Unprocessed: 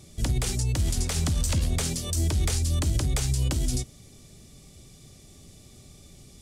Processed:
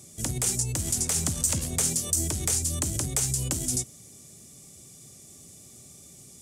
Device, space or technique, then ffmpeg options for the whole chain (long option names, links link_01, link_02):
budget condenser microphone: -af "highpass=110,highshelf=frequency=5500:width_type=q:width=1.5:gain=8,volume=-1.5dB"